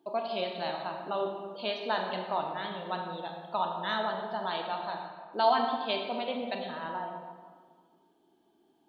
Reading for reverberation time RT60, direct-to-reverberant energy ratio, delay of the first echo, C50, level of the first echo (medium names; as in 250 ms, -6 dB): 1.7 s, 2.0 dB, no echo, 3.5 dB, no echo